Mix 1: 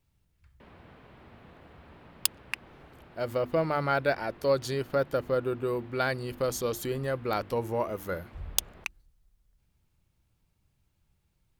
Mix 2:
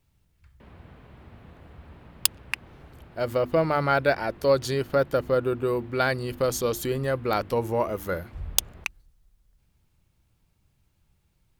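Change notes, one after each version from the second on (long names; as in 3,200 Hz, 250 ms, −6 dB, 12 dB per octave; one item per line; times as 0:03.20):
speech +4.5 dB
background: add low-shelf EQ 130 Hz +12 dB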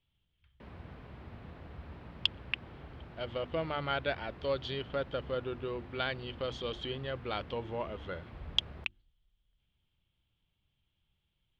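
speech: add transistor ladder low-pass 3,400 Hz, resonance 80%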